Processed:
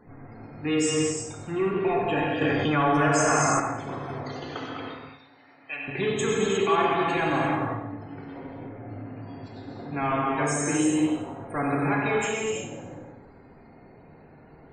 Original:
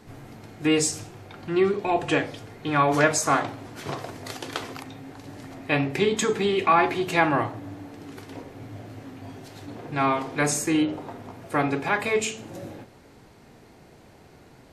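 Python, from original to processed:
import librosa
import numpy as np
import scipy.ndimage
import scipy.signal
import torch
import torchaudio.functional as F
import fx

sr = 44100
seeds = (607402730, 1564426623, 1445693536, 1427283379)

y = 10.0 ** (-18.0 / 20.0) * np.tanh(x / 10.0 ** (-18.0 / 20.0))
y = fx.spec_topn(y, sr, count=64)
y = fx.bandpass_q(y, sr, hz=3400.0, q=0.83, at=(4.79, 5.88))
y = fx.echo_feedback(y, sr, ms=94, feedback_pct=45, wet_db=-10.5)
y = fx.rev_gated(y, sr, seeds[0], gate_ms=380, shape='flat', drr_db=-2.5)
y = fx.env_flatten(y, sr, amount_pct=70, at=(2.41, 3.6))
y = y * librosa.db_to_amplitude(-3.5)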